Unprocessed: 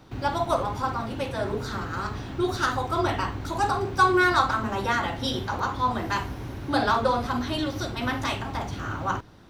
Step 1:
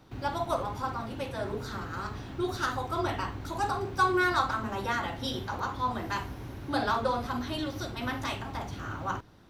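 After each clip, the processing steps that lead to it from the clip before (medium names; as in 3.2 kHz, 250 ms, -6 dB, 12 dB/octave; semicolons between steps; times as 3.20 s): peaking EQ 12 kHz +5 dB 0.24 oct; trim -5.5 dB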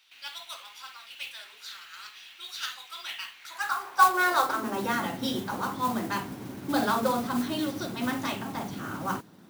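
high-pass sweep 2.7 kHz -> 190 Hz, 3.33–4.91 s; modulation noise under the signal 16 dB; trim +1 dB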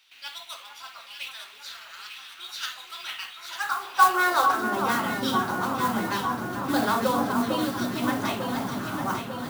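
echo whose repeats swap between lows and highs 449 ms, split 1.5 kHz, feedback 79%, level -5 dB; trim +1.5 dB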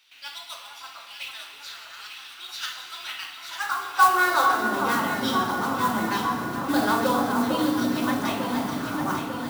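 FDN reverb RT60 1.9 s, low-frequency decay 1.55×, high-frequency decay 1×, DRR 5 dB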